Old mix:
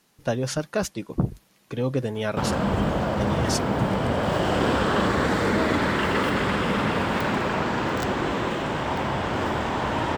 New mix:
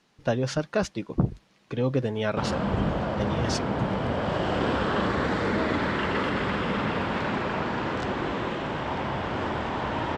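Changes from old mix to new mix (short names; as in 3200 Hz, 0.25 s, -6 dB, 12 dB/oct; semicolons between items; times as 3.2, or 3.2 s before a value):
background -3.5 dB; master: add LPF 5000 Hz 12 dB/oct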